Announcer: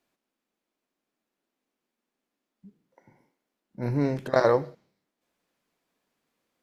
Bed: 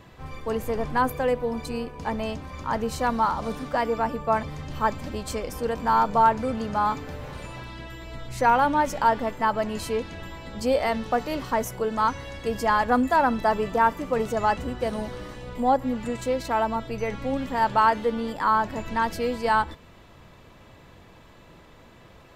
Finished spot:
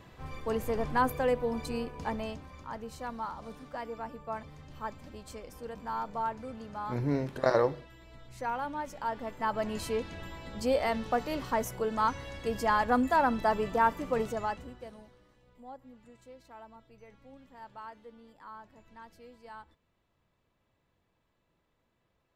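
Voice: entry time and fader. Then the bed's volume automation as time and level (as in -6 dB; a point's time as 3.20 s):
3.10 s, -4.5 dB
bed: 1.99 s -4 dB
2.77 s -14.5 dB
8.99 s -14.5 dB
9.68 s -5 dB
14.20 s -5 dB
15.21 s -26 dB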